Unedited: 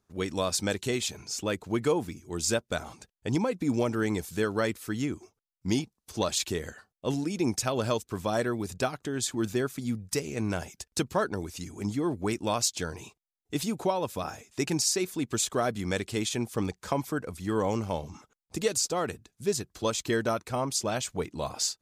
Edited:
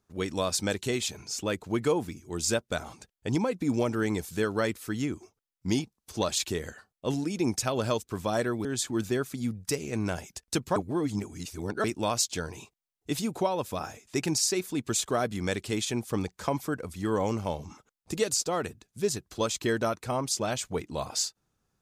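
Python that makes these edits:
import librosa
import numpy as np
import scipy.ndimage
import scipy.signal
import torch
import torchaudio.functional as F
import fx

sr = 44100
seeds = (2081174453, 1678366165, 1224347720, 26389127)

y = fx.edit(x, sr, fx.cut(start_s=8.65, length_s=0.44),
    fx.reverse_span(start_s=11.2, length_s=1.08), tone=tone)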